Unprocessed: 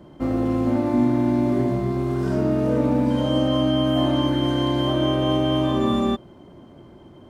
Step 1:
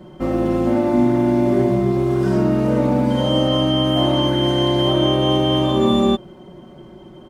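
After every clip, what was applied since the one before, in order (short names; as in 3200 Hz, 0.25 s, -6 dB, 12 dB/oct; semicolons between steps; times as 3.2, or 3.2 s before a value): comb 5.4 ms; gain +3.5 dB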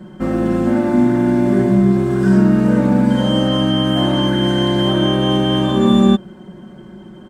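thirty-one-band EQ 200 Hz +12 dB, 630 Hz -3 dB, 1600 Hz +10 dB, 8000 Hz +7 dB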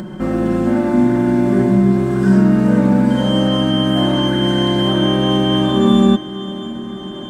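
diffused feedback echo 0.606 s, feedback 57%, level -16 dB; upward compressor, threshold -21 dBFS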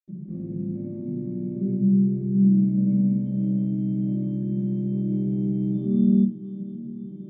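reverb, pre-delay 77 ms; gain -6.5 dB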